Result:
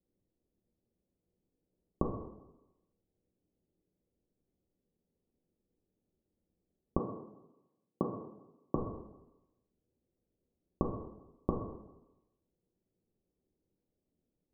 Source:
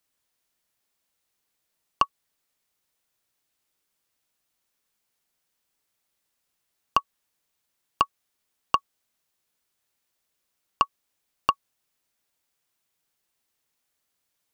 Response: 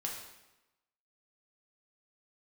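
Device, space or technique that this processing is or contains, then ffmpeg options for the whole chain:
next room: -filter_complex "[0:a]lowpass=f=430:w=0.5412,lowpass=f=430:w=1.3066[a];[1:a]atrim=start_sample=2205[b];[a][b]afir=irnorm=-1:irlink=0,asettb=1/sr,asplit=3[c][d][e];[c]atrim=end=6.994[f];[d]atrim=start=6.99:end=8.75,asetpts=PTS-STARTPTS,afade=t=in:d=0.004:c=qsin,afade=t=out:st=1.756:d=0.004:c=qsin,highpass=f=130:w=0.5412,highpass=f=130:w=1.3066[g];[e]atrim=start=8.746[h];[f][g]acrossfade=d=0.004:c1=hsin:c2=qsin[i];[i][h]acrossfade=d=0.004:c1=qsin:c2=hsin,volume=10.5dB"

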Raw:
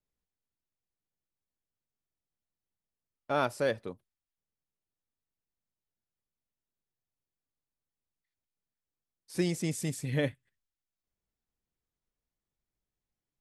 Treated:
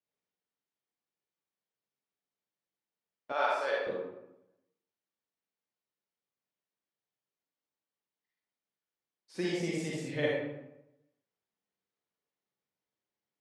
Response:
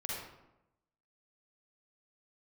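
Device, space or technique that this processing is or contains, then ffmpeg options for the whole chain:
supermarket ceiling speaker: -filter_complex "[0:a]highpass=240,lowpass=5.5k[a];[1:a]atrim=start_sample=2205[b];[a][b]afir=irnorm=-1:irlink=0,asettb=1/sr,asplit=3[c][d][e];[c]atrim=end=3.324[f];[d]atrim=start=3.32:end=3.87,asetpts=PTS-STARTPTS,afade=t=in:d=0.004:c=qsin,afade=t=out:st=0.546:d=0.004:c=qsin,highpass=630[g];[e]atrim=start=3.866[h];[f][g]acrossfade=d=0.004:c1=hsin:c2=qsin[i];[i][h]acrossfade=d=0.004:c1=qsin:c2=hsin"

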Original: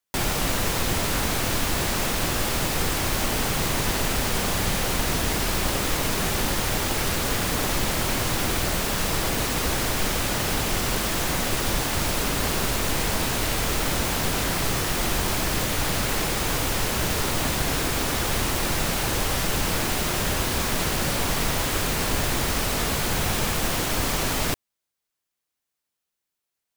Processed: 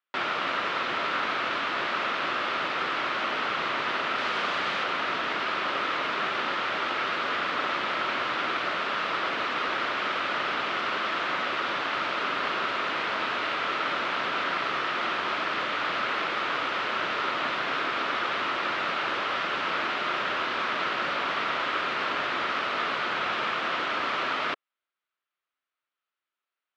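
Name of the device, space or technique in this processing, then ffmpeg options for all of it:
phone earpiece: -filter_complex "[0:a]highpass=460,equalizer=f=470:t=q:w=4:g=-4,equalizer=f=800:t=q:w=4:g=-5,equalizer=f=1.3k:t=q:w=4:g=8,lowpass=f=3.4k:w=0.5412,lowpass=f=3.4k:w=1.3066,asettb=1/sr,asplit=3[a][b][c];[a]atrim=end=4.184[d];[b]atrim=start=4.18:end=4.84,asetpts=PTS-STARTPTS,afade=t=in:d=0.004:c=qsin,afade=t=out:st=0.656:d=0.004:c=qsin,equalizer=f=9k:w=0.42:g=4[e];[c]atrim=start=4.836[f];[d][e]acrossfade=d=0.004:c1=hsin:c2=qsin[g];[g][f]acrossfade=d=0.004:c1=qsin:c2=hsin"

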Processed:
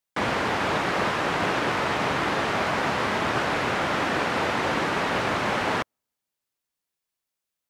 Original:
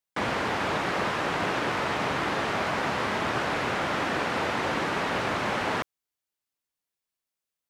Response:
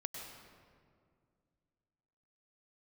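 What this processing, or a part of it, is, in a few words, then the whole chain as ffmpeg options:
keyed gated reverb: -filter_complex "[0:a]asplit=3[a][b][c];[1:a]atrim=start_sample=2205[d];[b][d]afir=irnorm=-1:irlink=0[e];[c]apad=whole_len=339329[f];[e][f]sidechaingate=range=-53dB:threshold=-24dB:ratio=16:detection=peak,volume=-5.5dB[g];[a][g]amix=inputs=2:normalize=0,volume=2.5dB"

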